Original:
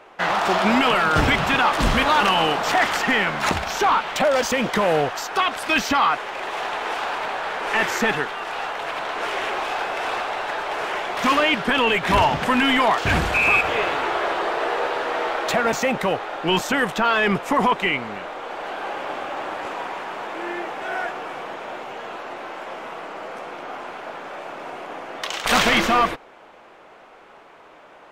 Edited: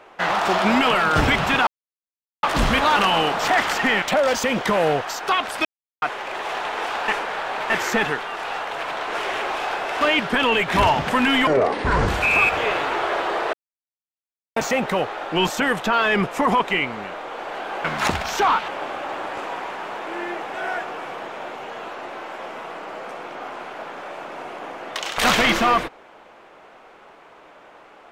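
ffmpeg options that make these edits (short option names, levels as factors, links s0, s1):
-filter_complex "[0:a]asplit=14[s0][s1][s2][s3][s4][s5][s6][s7][s8][s9][s10][s11][s12][s13];[s0]atrim=end=1.67,asetpts=PTS-STARTPTS,afade=t=out:st=1.666:d=0.004:c=hsin,apad=pad_dur=0.76[s14];[s1]atrim=start=1.67:end=3.262,asetpts=PTS-STARTPTS,afade=t=in:d=0.004:c=hsin[s15];[s2]atrim=start=4.098:end=5.73,asetpts=PTS-STARTPTS,afade=t=out:st=1.628:d=0.004:c=hsin[s16];[s3]atrim=start=5.73:end=6.1,asetpts=PTS-STARTPTS,volume=0[s17];[s4]atrim=start=6.1:end=7.162,asetpts=PTS-STARTPTS,afade=t=in:d=0.004:c=hsin[s18];[s5]atrim=start=7.158:end=7.782,asetpts=PTS-STARTPTS,areverse[s19];[s6]atrim=start=7.778:end=10.092[s20];[s7]atrim=start=11.358:end=12.824[s21];[s8]atrim=start=12.82:end=13.2,asetpts=PTS-STARTPTS,asetrate=27342,aresample=44100,atrim=end_sample=27029,asetpts=PTS-STARTPTS[s22];[s9]atrim=start=13.196:end=14.65,asetpts=PTS-STARTPTS,afade=t=out:st=1.45:d=0.004:c=hsin[s23];[s10]atrim=start=14.65:end=15.68,asetpts=PTS-STARTPTS,volume=0[s24];[s11]atrim=start=15.68:end=18.962,asetpts=PTS-STARTPTS,afade=t=in:d=0.004:c=hsin[s25];[s12]atrim=start=3.258:end=4.102[s26];[s13]atrim=start=18.958[s27];[s14][s15]concat=n=2:v=0:a=1[s28];[s16][s17][s18]concat=n=3:v=0:a=1[s29];[s28][s29]acrossfade=d=0.004:c1=hsin:c2=hsin[s30];[s30][s19]acrossfade=d=0.004:c1=hsin:c2=hsin[s31];[s31][s20]acrossfade=d=0.004:c1=hsin:c2=hsin[s32];[s32][s21]acrossfade=d=0.004:c1=hsin:c2=hsin[s33];[s33][s22]acrossfade=d=0.004:c1=hsin:c2=hsin[s34];[s23][s24][s25]concat=n=3:v=0:a=1[s35];[s34][s35]acrossfade=d=0.004:c1=hsin:c2=hsin[s36];[s36][s26]acrossfade=d=0.004:c1=hsin:c2=hsin[s37];[s37][s27]acrossfade=d=0.004:c1=hsin:c2=hsin"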